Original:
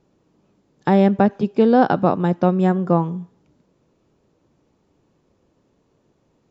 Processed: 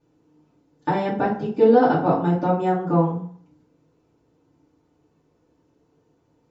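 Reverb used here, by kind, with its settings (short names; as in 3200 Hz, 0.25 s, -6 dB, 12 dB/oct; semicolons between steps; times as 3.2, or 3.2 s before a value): FDN reverb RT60 0.52 s, low-frequency decay 0.9×, high-frequency decay 0.6×, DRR -9.5 dB; gain -12 dB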